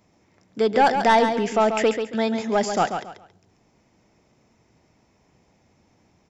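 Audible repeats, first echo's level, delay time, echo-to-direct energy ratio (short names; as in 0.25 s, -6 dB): 3, -7.5 dB, 0.138 s, -7.0 dB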